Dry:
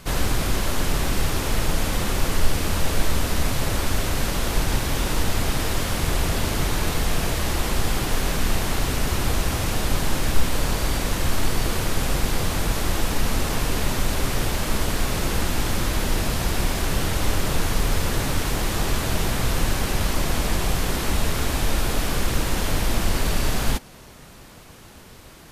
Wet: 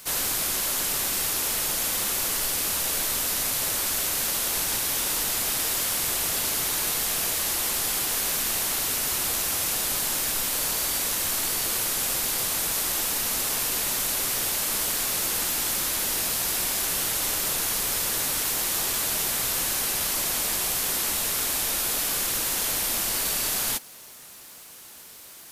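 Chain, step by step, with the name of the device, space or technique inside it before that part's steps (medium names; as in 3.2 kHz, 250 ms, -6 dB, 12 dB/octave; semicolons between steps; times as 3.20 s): turntable without a phono preamp (RIAA curve recording; white noise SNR 33 dB); trim -5.5 dB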